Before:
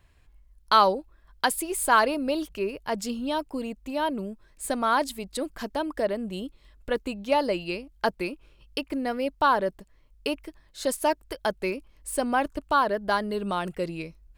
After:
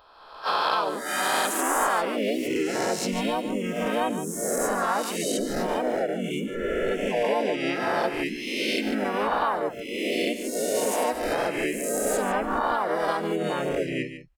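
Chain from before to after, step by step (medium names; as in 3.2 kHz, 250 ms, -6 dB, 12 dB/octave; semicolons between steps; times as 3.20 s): reverse spectral sustain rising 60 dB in 1.60 s; spectral noise reduction 22 dB; peaking EQ 190 Hz -9 dB 0.27 oct; compression 4:1, threshold -30 dBFS, peak gain reduction 15.5 dB; delay 151 ms -10.5 dB; harmony voices -4 st 0 dB, +3 st -6 dB; trim +2.5 dB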